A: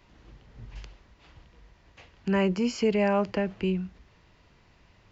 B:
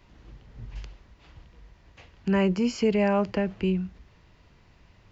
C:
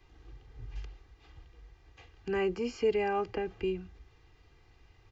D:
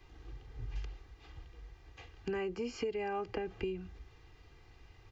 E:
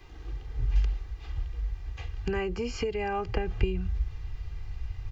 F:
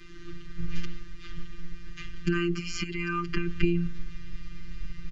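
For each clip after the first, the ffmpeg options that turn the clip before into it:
-af "lowshelf=f=200:g=4.5"
-filter_complex "[0:a]aecho=1:1:2.5:0.73,acrossover=split=230|2800[s0][s1][s2];[s2]alimiter=level_in=3.98:limit=0.0631:level=0:latency=1:release=127,volume=0.251[s3];[s0][s1][s3]amix=inputs=3:normalize=0,volume=0.473"
-af "acompressor=threshold=0.0158:ratio=8,volume=1.33"
-af "asubboost=boost=9:cutoff=100,volume=2.37"
-af "aresample=22050,aresample=44100,afftfilt=real='hypot(re,im)*cos(PI*b)':imag='0':win_size=1024:overlap=0.75,asuperstop=centerf=660:order=12:qfactor=0.91,volume=2.66"

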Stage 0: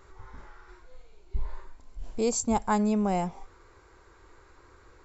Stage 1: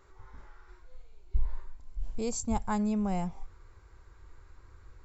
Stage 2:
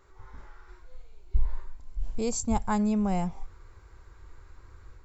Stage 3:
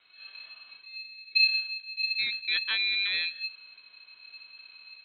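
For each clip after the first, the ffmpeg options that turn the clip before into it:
-af "asubboost=boost=4.5:cutoff=170,volume=0.501"
-af "dynaudnorm=f=110:g=3:m=1.5"
-af "lowpass=f=2900:t=q:w=0.5098,lowpass=f=2900:t=q:w=0.6013,lowpass=f=2900:t=q:w=0.9,lowpass=f=2900:t=q:w=2.563,afreqshift=-3400,aeval=exprs='val(0)*sin(2*PI*790*n/s)':c=same"

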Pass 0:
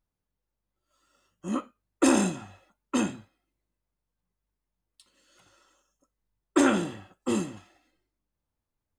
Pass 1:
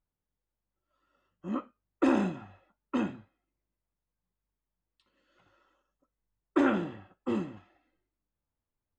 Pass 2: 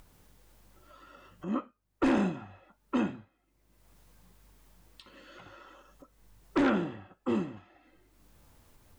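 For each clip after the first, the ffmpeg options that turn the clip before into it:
-af "lowpass=2400,volume=0.668"
-af "aeval=exprs='0.224*(cos(1*acos(clip(val(0)/0.224,-1,1)))-cos(1*PI/2))+0.0891*(cos(5*acos(clip(val(0)/0.224,-1,1)))-cos(5*PI/2))+0.0316*(cos(7*acos(clip(val(0)/0.224,-1,1)))-cos(7*PI/2))':c=same,acompressor=mode=upward:threshold=0.0224:ratio=2.5,volume=0.596"

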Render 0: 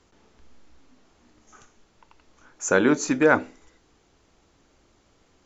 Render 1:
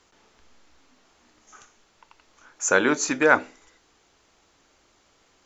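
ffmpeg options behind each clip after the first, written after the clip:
-af "lowshelf=f=450:g=-11.5,volume=1.58"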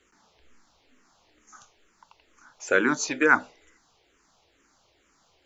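-filter_complex "[0:a]asplit=2[s0][s1];[s1]afreqshift=-2.2[s2];[s0][s2]amix=inputs=2:normalize=1"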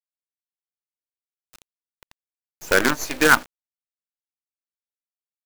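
-af "acrusher=bits=4:dc=4:mix=0:aa=0.000001,volume=1.58"

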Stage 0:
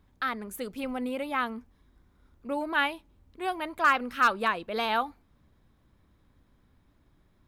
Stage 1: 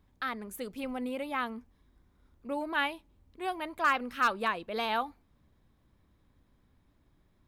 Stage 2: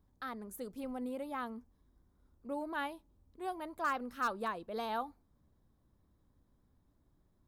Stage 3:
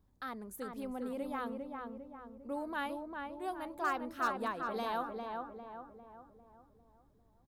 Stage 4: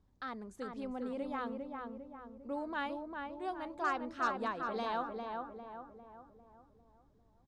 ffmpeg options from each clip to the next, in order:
-af "equalizer=f=1400:t=o:w=0.34:g=-2.5,volume=0.708"
-af "equalizer=f=2500:w=1.1:g=-11.5,volume=0.631"
-filter_complex "[0:a]asplit=2[s0][s1];[s1]adelay=401,lowpass=f=1700:p=1,volume=0.668,asplit=2[s2][s3];[s3]adelay=401,lowpass=f=1700:p=1,volume=0.5,asplit=2[s4][s5];[s5]adelay=401,lowpass=f=1700:p=1,volume=0.5,asplit=2[s6][s7];[s7]adelay=401,lowpass=f=1700:p=1,volume=0.5,asplit=2[s8][s9];[s9]adelay=401,lowpass=f=1700:p=1,volume=0.5,asplit=2[s10][s11];[s11]adelay=401,lowpass=f=1700:p=1,volume=0.5,asplit=2[s12][s13];[s13]adelay=401,lowpass=f=1700:p=1,volume=0.5[s14];[s0][s2][s4][s6][s8][s10][s12][s14]amix=inputs=8:normalize=0"
-af "lowpass=f=7100:w=0.5412,lowpass=f=7100:w=1.3066"

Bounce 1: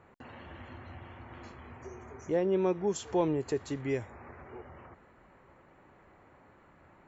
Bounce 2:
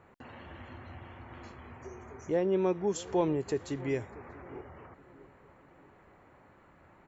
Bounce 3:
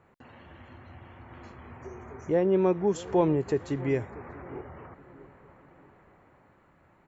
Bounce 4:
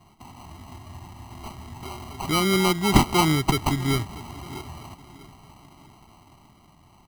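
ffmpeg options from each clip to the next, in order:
-filter_complex "[0:a]asplit=2[s0][s1];[s1]adelay=638,lowpass=f=1200:p=1,volume=0.112,asplit=2[s2][s3];[s3]adelay=638,lowpass=f=1200:p=1,volume=0.47,asplit=2[s4][s5];[s5]adelay=638,lowpass=f=1200:p=1,volume=0.47,asplit=2[s6][s7];[s7]adelay=638,lowpass=f=1200:p=1,volume=0.47[s8];[s0][s2][s4][s6][s8]amix=inputs=5:normalize=0"
-filter_complex "[0:a]equalizer=f=150:t=o:w=0.77:g=2.5,acrossover=split=2600[s0][s1];[s0]dynaudnorm=f=290:g=11:m=2.37[s2];[s2][s1]amix=inputs=2:normalize=0,volume=0.708"
-af "aexciter=amount=8.7:drive=8.8:freq=3400,acrusher=samples=25:mix=1:aa=0.000001,aecho=1:1:1:0.86,volume=1.33"

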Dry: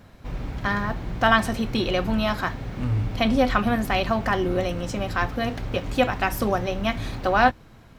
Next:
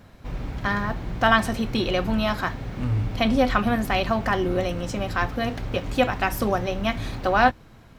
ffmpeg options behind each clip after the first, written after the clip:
-af anull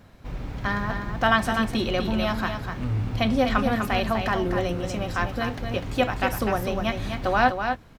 -af "aecho=1:1:249:0.473,volume=0.794"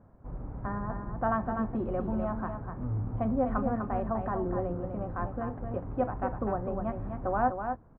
-af "lowpass=f=1200:w=0.5412,lowpass=f=1200:w=1.3066,volume=0.501"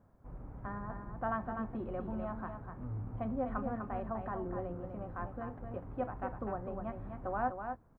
-af "highshelf=f=2300:g=10,volume=0.398"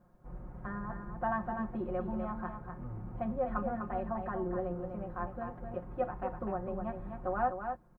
-af "aecho=1:1:5.6:0.78"

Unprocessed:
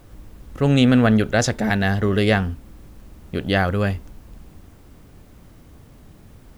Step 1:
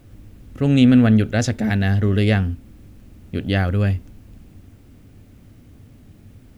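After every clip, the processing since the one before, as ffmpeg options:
-af "equalizer=f=100:t=o:w=0.67:g=9,equalizer=f=250:t=o:w=0.67:g=7,equalizer=f=1000:t=o:w=0.67:g=-5,equalizer=f=2500:t=o:w=0.67:g=3,volume=0.631"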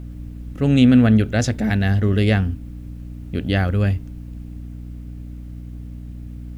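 -af "aeval=exprs='val(0)+0.0251*(sin(2*PI*60*n/s)+sin(2*PI*2*60*n/s)/2+sin(2*PI*3*60*n/s)/3+sin(2*PI*4*60*n/s)/4+sin(2*PI*5*60*n/s)/5)':c=same"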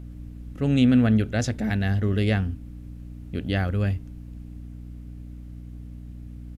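-af "aresample=32000,aresample=44100,volume=0.531"

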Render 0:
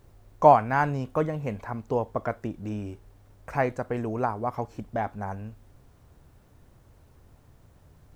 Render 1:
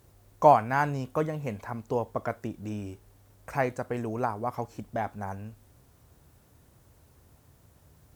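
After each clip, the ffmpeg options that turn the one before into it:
-af "highpass=49,aemphasis=mode=production:type=cd,volume=0.794"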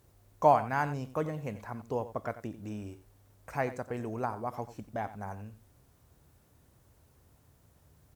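-af "aecho=1:1:90:0.188,volume=0.596"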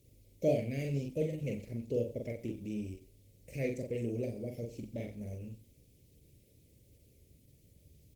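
-filter_complex "[0:a]asuperstop=centerf=1100:order=12:qfactor=0.73,asplit=2[s0][s1];[s1]adelay=43,volume=0.708[s2];[s0][s2]amix=inputs=2:normalize=0" -ar 48000 -c:a libopus -b:a 16k

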